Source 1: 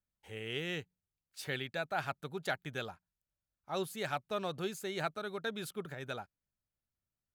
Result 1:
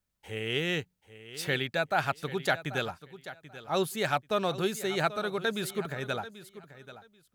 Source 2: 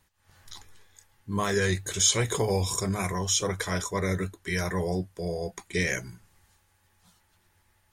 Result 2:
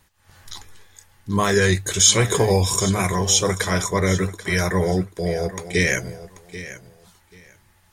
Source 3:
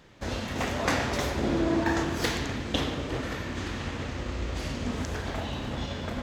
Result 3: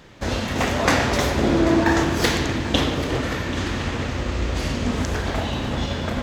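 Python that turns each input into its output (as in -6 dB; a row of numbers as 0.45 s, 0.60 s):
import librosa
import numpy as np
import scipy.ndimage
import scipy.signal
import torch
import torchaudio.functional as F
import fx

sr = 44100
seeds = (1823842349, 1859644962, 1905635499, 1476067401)

y = fx.echo_feedback(x, sr, ms=786, feedback_pct=19, wet_db=-15)
y = y * librosa.db_to_amplitude(8.0)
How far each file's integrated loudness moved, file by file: +8.0 LU, +8.0 LU, +8.0 LU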